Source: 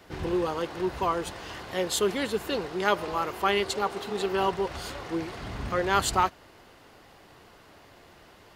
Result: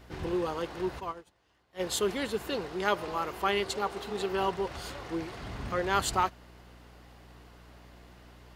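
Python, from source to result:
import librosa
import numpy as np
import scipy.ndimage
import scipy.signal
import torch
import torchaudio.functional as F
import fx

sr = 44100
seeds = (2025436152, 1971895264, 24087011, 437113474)

y = fx.add_hum(x, sr, base_hz=60, snr_db=21)
y = fx.upward_expand(y, sr, threshold_db=-38.0, expansion=2.5, at=(0.99, 1.79), fade=0.02)
y = F.gain(torch.from_numpy(y), -3.5).numpy()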